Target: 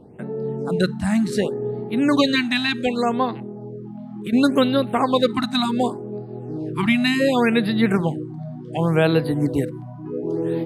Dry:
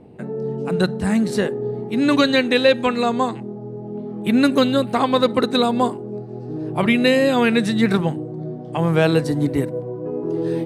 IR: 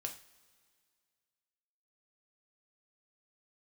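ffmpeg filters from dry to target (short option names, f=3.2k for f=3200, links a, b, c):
-filter_complex "[0:a]asettb=1/sr,asplit=3[a][b][c];[a]atrim=end=3.434[d];[b]atrim=start=3.43:end=4.33,asetpts=PTS-STARTPTS,afade=t=in:d=0.004:c=qsin,afade=t=out:st=0.896:d=0.004:c=qsin,acompressor=threshold=-29dB:ratio=2.5[e];[c]atrim=start=4.326[f];[d][e]acrossfade=d=0.004:c1=hsin:c2=qsin[g];[g][f]acrossfade=d=0.004:c1=qsin:c2=hsin,afftfilt=real='re*(1-between(b*sr/1024,400*pow(7400/400,0.5+0.5*sin(2*PI*0.68*pts/sr))/1.41,400*pow(7400/400,0.5+0.5*sin(2*PI*0.68*pts/sr))*1.41))':imag='im*(1-between(b*sr/1024,400*pow(7400/400,0.5+0.5*sin(2*PI*0.68*pts/sr))/1.41,400*pow(7400/400,0.5+0.5*sin(2*PI*0.68*pts/sr))*1.41))':win_size=1024:overlap=0.75,volume=-1dB"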